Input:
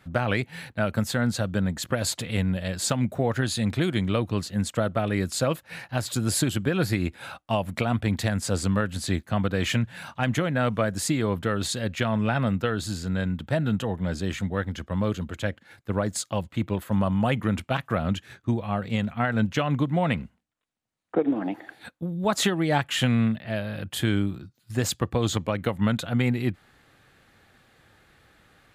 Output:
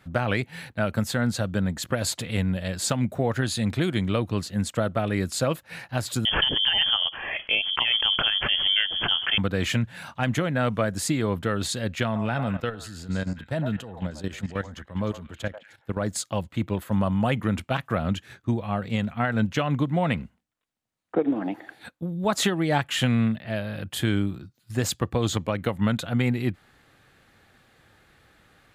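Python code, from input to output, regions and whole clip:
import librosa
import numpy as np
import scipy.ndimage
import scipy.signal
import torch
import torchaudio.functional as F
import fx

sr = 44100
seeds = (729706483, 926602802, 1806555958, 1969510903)

y = fx.chain(x, sr, fx.freq_invert(carrier_hz=3300),
    fx.pre_swell(db_per_s=41.0), at=(6.25, 9.38))
y = fx.chain(y, sr, fx.echo_stepped(ms=103, hz=820.0, octaves=1.4, feedback_pct=70, wet_db=-4),
    fx.level_steps(step_db=13), at=(12.05, 16.02))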